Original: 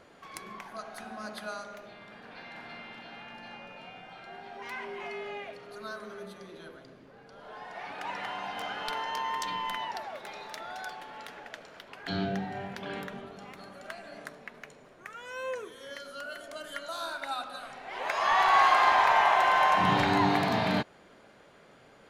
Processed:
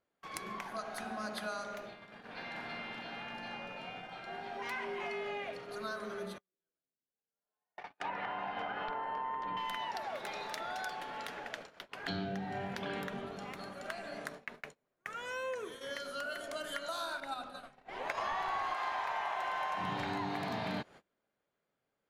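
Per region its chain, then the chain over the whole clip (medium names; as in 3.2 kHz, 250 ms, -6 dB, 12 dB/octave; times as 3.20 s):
6.38–9.57 s: gate -40 dBFS, range -21 dB + low-pass that closes with the level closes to 1.4 kHz, closed at -31 dBFS + treble shelf 2.9 kHz -3 dB
17.20–18.74 s: gate -32 dBFS, range -9 dB + bass shelf 400 Hz +11.5 dB
whole clip: gate -48 dBFS, range -31 dB; compression 6:1, threshold -37 dBFS; trim +2 dB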